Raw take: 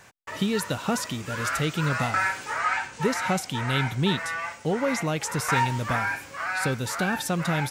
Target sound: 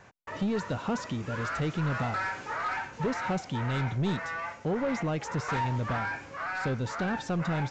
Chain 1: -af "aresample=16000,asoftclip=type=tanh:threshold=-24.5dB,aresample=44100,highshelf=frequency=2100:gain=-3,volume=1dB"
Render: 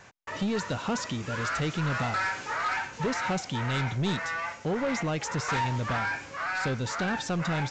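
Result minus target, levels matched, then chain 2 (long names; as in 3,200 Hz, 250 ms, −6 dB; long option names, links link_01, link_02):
4,000 Hz band +5.0 dB
-af "aresample=16000,asoftclip=type=tanh:threshold=-24.5dB,aresample=44100,highshelf=frequency=2100:gain=-12,volume=1dB"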